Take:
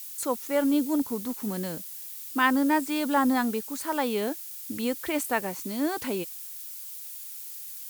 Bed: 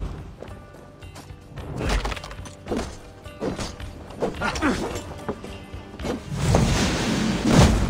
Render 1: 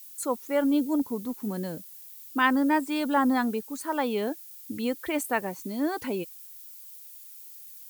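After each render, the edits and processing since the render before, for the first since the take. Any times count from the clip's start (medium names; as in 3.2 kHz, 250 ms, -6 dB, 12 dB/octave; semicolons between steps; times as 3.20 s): noise reduction 9 dB, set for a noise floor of -40 dBFS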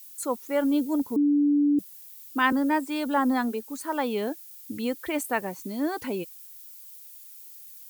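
1.16–1.79 s: bleep 290 Hz -18 dBFS; 2.52–3.67 s: elliptic high-pass 230 Hz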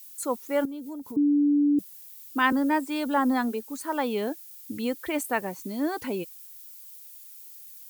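0.65–1.17 s: compression 12:1, threshold -34 dBFS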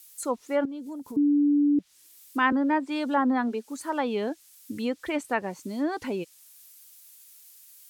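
low-pass that closes with the level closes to 2.6 kHz, closed at -20 dBFS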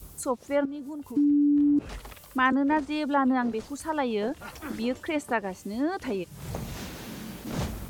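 add bed -16.5 dB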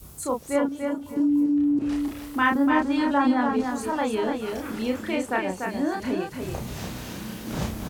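doubling 32 ms -2.5 dB; feedback delay 292 ms, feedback 23%, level -5 dB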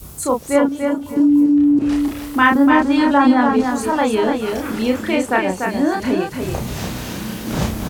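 trim +8.5 dB; peak limiter -1 dBFS, peak gain reduction 2 dB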